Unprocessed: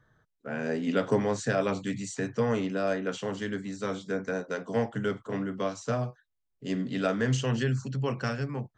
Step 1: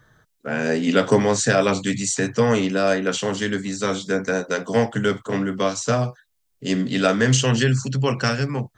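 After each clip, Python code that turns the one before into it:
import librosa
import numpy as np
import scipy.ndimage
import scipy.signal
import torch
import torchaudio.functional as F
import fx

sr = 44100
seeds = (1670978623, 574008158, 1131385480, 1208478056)

y = fx.high_shelf(x, sr, hz=3000.0, db=9.5)
y = y * 10.0 ** (8.5 / 20.0)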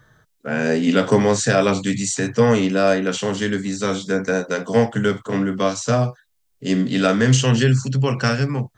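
y = fx.hpss(x, sr, part='harmonic', gain_db=5)
y = y * 10.0 ** (-1.5 / 20.0)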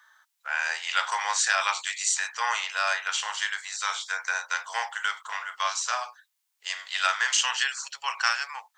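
y = scipy.signal.sosfilt(scipy.signal.ellip(4, 1.0, 70, 880.0, 'highpass', fs=sr, output='sos'), x)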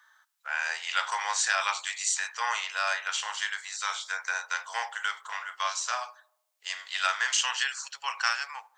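y = fx.echo_filtered(x, sr, ms=77, feedback_pct=63, hz=1100.0, wet_db=-20.0)
y = y * 10.0 ** (-2.5 / 20.0)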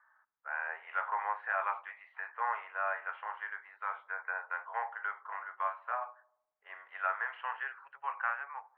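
y = scipy.signal.sosfilt(scipy.signal.bessel(8, 1100.0, 'lowpass', norm='mag', fs=sr, output='sos'), x)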